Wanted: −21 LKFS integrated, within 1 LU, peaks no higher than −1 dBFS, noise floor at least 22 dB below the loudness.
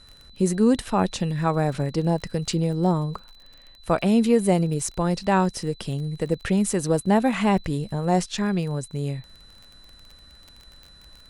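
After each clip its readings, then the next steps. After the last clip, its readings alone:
crackle rate 28 per second; interfering tone 4,000 Hz; level of the tone −50 dBFS; integrated loudness −23.5 LKFS; sample peak −6.5 dBFS; target loudness −21.0 LKFS
→ click removal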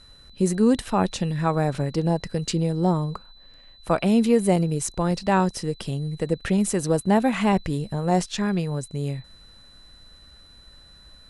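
crackle rate 0 per second; interfering tone 4,000 Hz; level of the tone −50 dBFS
→ notch filter 4,000 Hz, Q 30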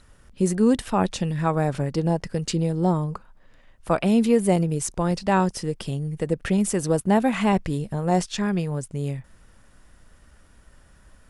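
interfering tone none found; integrated loudness −23.5 LKFS; sample peak −6.5 dBFS; target loudness −21.0 LKFS
→ level +2.5 dB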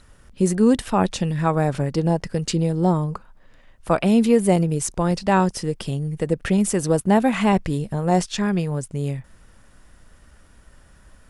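integrated loudness −21.0 LKFS; sample peak −4.0 dBFS; background noise floor −52 dBFS

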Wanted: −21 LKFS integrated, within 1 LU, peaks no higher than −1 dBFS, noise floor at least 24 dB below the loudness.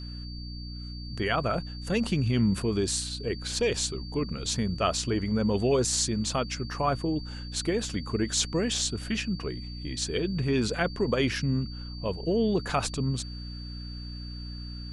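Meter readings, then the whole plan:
mains hum 60 Hz; hum harmonics up to 300 Hz; level of the hum −36 dBFS; interfering tone 4,600 Hz; level of the tone −44 dBFS; integrated loudness −28.5 LKFS; sample peak −9.5 dBFS; target loudness −21.0 LKFS
→ hum removal 60 Hz, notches 5
notch filter 4,600 Hz, Q 30
level +7.5 dB

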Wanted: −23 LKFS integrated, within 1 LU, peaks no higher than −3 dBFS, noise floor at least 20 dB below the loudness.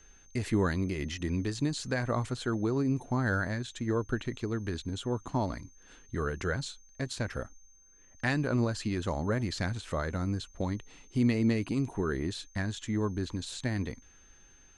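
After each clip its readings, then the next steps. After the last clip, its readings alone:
interfering tone 6,300 Hz; level of the tone −59 dBFS; integrated loudness −32.5 LKFS; sample peak −15.5 dBFS; target loudness −23.0 LKFS
→ notch filter 6,300 Hz, Q 30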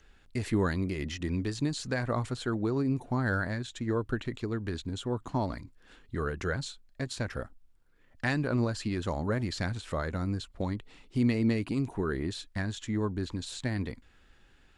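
interfering tone none found; integrated loudness −32.5 LKFS; sample peak −15.5 dBFS; target loudness −23.0 LKFS
→ level +9.5 dB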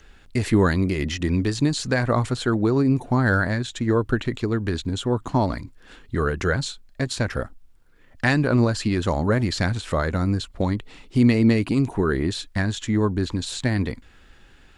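integrated loudness −23.0 LKFS; sample peak −6.0 dBFS; background noise floor −52 dBFS

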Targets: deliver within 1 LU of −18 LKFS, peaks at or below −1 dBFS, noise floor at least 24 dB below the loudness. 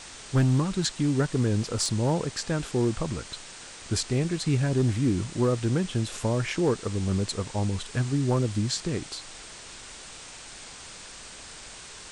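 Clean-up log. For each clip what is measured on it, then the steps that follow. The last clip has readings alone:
share of clipped samples 0.4%; peaks flattened at −16.0 dBFS; background noise floor −44 dBFS; target noise floor −51 dBFS; integrated loudness −27.0 LKFS; sample peak −16.0 dBFS; target loudness −18.0 LKFS
→ clipped peaks rebuilt −16 dBFS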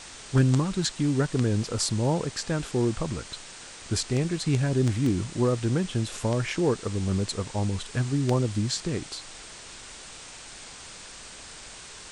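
share of clipped samples 0.0%; background noise floor −44 dBFS; target noise floor −51 dBFS
→ broadband denoise 7 dB, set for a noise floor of −44 dBFS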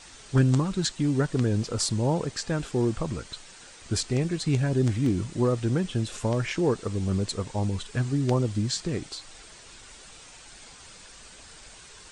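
background noise floor −49 dBFS; target noise floor −51 dBFS
→ broadband denoise 6 dB, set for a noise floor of −49 dBFS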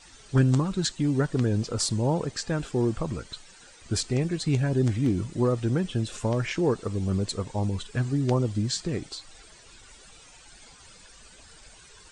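background noise floor −52 dBFS; integrated loudness −27.0 LKFS; sample peak −8.0 dBFS; target loudness −18.0 LKFS
→ level +9 dB
brickwall limiter −1 dBFS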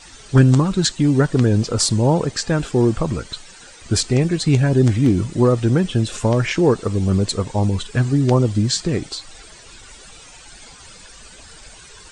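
integrated loudness −18.0 LKFS; sample peak −1.0 dBFS; background noise floor −43 dBFS

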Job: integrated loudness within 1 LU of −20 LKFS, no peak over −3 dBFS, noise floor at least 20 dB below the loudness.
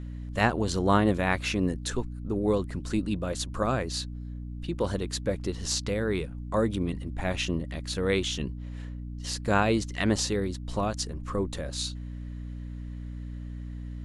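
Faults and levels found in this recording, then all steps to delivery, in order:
mains hum 60 Hz; hum harmonics up to 300 Hz; level of the hum −35 dBFS; integrated loudness −29.5 LKFS; sample peak −9.0 dBFS; target loudness −20.0 LKFS
→ mains-hum notches 60/120/180/240/300 Hz
level +9.5 dB
brickwall limiter −3 dBFS

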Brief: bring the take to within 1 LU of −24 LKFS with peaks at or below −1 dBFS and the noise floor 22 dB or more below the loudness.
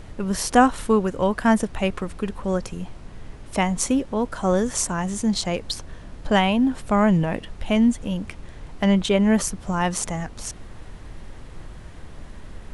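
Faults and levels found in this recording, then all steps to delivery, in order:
background noise floor −41 dBFS; target noise floor −45 dBFS; integrated loudness −22.5 LKFS; sample peak −4.0 dBFS; target loudness −24.0 LKFS
→ noise reduction from a noise print 6 dB
level −1.5 dB

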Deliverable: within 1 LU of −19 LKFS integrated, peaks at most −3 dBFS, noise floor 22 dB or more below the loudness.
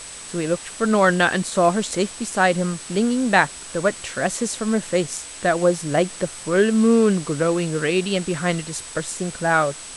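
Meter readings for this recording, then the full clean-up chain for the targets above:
interfering tone 8,000 Hz; level of the tone −38 dBFS; background noise floor −37 dBFS; target noise floor −43 dBFS; integrated loudness −21.0 LKFS; sample peak −2.0 dBFS; target loudness −19.0 LKFS
→ notch filter 8,000 Hz, Q 30
noise reduction from a noise print 6 dB
level +2 dB
brickwall limiter −3 dBFS

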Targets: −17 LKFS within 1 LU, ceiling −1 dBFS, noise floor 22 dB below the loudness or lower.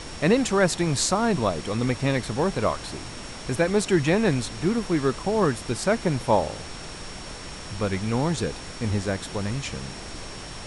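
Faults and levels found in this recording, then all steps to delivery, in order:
interfering tone 5,500 Hz; level of the tone −45 dBFS; background noise floor −38 dBFS; target noise floor −47 dBFS; integrated loudness −24.5 LKFS; sample peak −7.5 dBFS; target loudness −17.0 LKFS
→ notch filter 5,500 Hz, Q 30
noise reduction from a noise print 9 dB
level +7.5 dB
brickwall limiter −1 dBFS

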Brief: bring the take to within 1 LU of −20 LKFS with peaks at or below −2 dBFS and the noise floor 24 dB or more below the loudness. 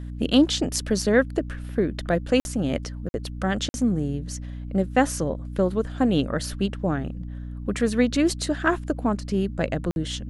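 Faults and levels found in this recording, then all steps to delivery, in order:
number of dropouts 4; longest dropout 51 ms; mains hum 60 Hz; hum harmonics up to 300 Hz; level of the hum −32 dBFS; integrated loudness −25.0 LKFS; sample peak −5.5 dBFS; target loudness −20.0 LKFS
→ repair the gap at 0:02.40/0:03.09/0:03.69/0:09.91, 51 ms
mains-hum notches 60/120/180/240/300 Hz
level +5 dB
brickwall limiter −2 dBFS

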